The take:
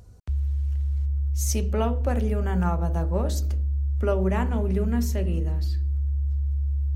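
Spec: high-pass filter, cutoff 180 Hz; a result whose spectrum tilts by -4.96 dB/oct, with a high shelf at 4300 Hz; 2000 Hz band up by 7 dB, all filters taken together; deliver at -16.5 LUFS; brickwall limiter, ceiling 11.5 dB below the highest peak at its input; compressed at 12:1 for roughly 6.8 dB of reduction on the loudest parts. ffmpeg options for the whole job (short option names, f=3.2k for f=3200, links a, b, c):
-af "highpass=180,equalizer=f=2k:t=o:g=8,highshelf=f=4.3k:g=5.5,acompressor=threshold=-27dB:ratio=12,volume=23dB,alimiter=limit=-6.5dB:level=0:latency=1"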